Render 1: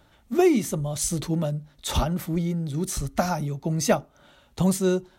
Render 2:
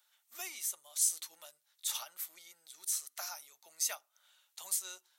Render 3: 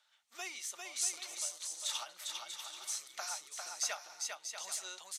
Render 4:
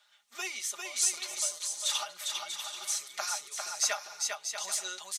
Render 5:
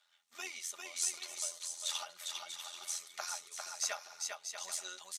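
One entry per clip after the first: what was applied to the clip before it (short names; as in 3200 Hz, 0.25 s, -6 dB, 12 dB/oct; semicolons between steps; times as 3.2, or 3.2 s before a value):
Chebyshev high-pass 890 Hz, order 2; differentiator; gain -1.5 dB
LPF 5600 Hz 12 dB/oct; on a send: bouncing-ball echo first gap 0.4 s, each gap 0.6×, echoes 5; on the sum: gain +2.5 dB
comb 4.9 ms, depth 73%; gain +5 dB
AM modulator 85 Hz, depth 40%; gain -4.5 dB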